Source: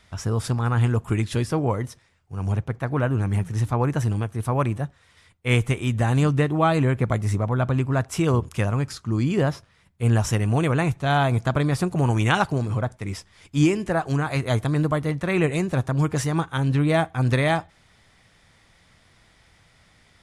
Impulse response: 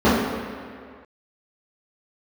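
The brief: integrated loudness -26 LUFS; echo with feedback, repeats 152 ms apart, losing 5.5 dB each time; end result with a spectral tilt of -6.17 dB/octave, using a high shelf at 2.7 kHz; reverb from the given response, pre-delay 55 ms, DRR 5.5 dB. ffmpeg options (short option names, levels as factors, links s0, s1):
-filter_complex "[0:a]highshelf=f=2700:g=9,aecho=1:1:152|304|456|608|760|912|1064:0.531|0.281|0.149|0.079|0.0419|0.0222|0.0118,asplit=2[s0][s1];[1:a]atrim=start_sample=2205,adelay=55[s2];[s1][s2]afir=irnorm=-1:irlink=0,volume=0.0299[s3];[s0][s3]amix=inputs=2:normalize=0,volume=0.422"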